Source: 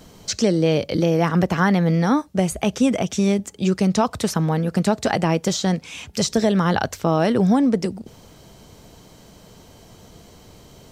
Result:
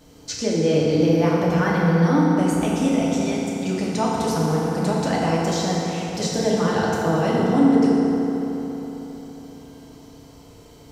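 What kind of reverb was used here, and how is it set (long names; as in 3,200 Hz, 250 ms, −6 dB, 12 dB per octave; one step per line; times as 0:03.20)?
feedback delay network reverb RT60 3.9 s, high-frequency decay 0.55×, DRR −5.5 dB
level −7.5 dB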